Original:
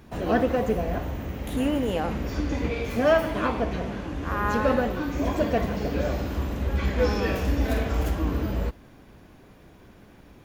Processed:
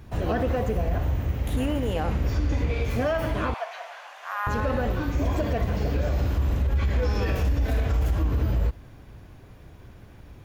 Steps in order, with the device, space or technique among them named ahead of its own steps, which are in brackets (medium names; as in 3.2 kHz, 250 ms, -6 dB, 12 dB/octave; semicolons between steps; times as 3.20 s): 3.54–4.47 s: elliptic high-pass 680 Hz, stop band 70 dB; car stereo with a boomy subwoofer (resonant low shelf 150 Hz +7 dB, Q 1.5; peak limiter -16.5 dBFS, peak gain reduction 9 dB)